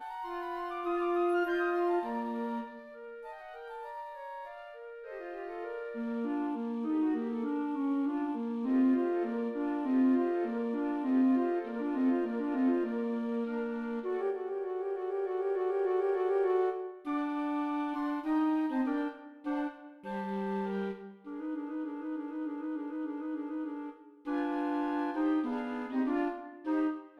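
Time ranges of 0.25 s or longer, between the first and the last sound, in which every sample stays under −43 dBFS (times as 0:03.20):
0:23.91–0:24.26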